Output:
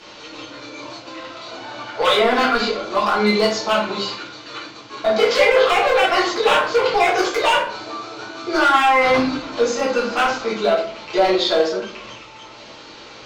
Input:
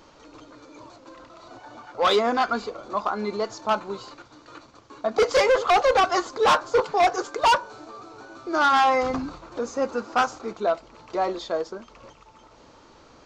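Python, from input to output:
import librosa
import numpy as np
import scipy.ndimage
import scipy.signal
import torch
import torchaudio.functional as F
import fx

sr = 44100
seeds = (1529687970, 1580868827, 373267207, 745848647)

p1 = fx.weighting(x, sr, curve='D')
p2 = fx.env_lowpass_down(p1, sr, base_hz=2800.0, full_db=-13.5)
p3 = fx.high_shelf(p2, sr, hz=7300.0, db=-8.0)
p4 = fx.over_compress(p3, sr, threshold_db=-24.0, ratio=-0.5)
p5 = p3 + (p4 * librosa.db_to_amplitude(0.5))
p6 = np.clip(10.0 ** (11.0 / 20.0) * p5, -1.0, 1.0) / 10.0 ** (11.0 / 20.0)
p7 = fx.room_shoebox(p6, sr, seeds[0], volume_m3=59.0, walls='mixed', distance_m=1.5)
p8 = fx.end_taper(p7, sr, db_per_s=190.0)
y = p8 * librosa.db_to_amplitude(-6.5)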